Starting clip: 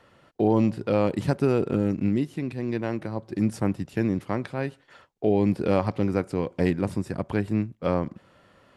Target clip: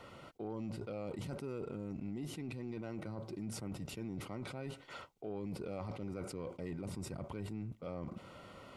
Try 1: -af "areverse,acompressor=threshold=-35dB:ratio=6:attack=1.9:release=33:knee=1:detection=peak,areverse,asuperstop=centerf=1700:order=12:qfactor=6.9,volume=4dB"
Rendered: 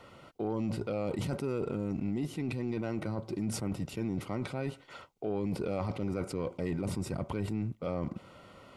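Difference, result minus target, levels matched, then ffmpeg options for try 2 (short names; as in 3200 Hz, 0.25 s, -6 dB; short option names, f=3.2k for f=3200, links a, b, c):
compressor: peak gain reduction -8.5 dB
-af "areverse,acompressor=threshold=-45.5dB:ratio=6:attack=1.9:release=33:knee=1:detection=peak,areverse,asuperstop=centerf=1700:order=12:qfactor=6.9,volume=4dB"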